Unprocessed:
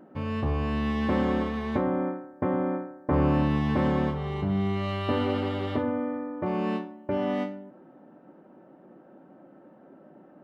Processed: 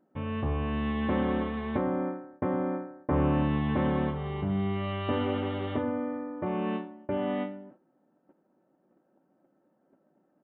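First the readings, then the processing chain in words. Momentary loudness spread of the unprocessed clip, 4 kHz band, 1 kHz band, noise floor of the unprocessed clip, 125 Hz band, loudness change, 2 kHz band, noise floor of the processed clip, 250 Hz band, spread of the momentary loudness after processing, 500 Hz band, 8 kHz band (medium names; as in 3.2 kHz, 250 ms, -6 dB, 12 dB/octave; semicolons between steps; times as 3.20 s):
7 LU, -3.0 dB, -2.5 dB, -54 dBFS, -2.5 dB, -2.5 dB, -2.5 dB, -71 dBFS, -2.5 dB, 7 LU, -2.5 dB, no reading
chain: gate -48 dBFS, range -15 dB; resampled via 8 kHz; trim -2.5 dB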